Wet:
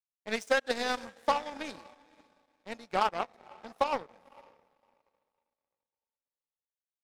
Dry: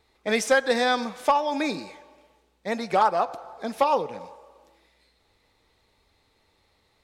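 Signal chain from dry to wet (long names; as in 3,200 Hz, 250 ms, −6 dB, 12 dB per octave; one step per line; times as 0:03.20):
feedback delay with all-pass diffusion 523 ms, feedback 45%, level −12 dB
power curve on the samples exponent 2
level −3.5 dB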